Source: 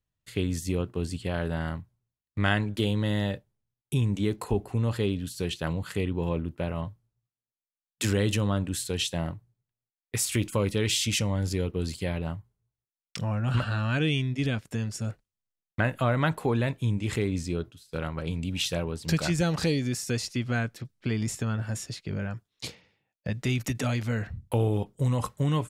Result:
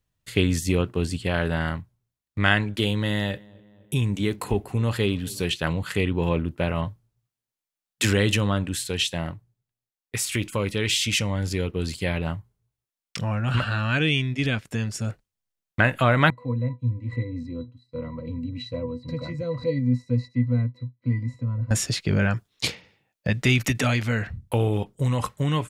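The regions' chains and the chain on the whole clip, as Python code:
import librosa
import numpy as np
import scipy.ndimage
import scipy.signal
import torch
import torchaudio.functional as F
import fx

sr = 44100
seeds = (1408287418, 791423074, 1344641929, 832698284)

y = fx.chain(x, sr, fx.high_shelf(hz=9700.0, db=6.5),
    fx.echo_filtered(ms=252, feedback_pct=55, hz=3200.0, wet_db=-23.0), at=(2.81, 5.52))
y = fx.chain(y, sr, fx.tremolo_shape(shape='saw_up', hz=4.3, depth_pct=35),
    fx.octave_resonator(note='B', decay_s=0.13), at=(16.3, 21.71))
y = fx.dynamic_eq(y, sr, hz=2200.0, q=0.78, threshold_db=-46.0, ratio=4.0, max_db=6)
y = fx.rider(y, sr, range_db=10, speed_s=2.0)
y = y * 10.0 ** (2.5 / 20.0)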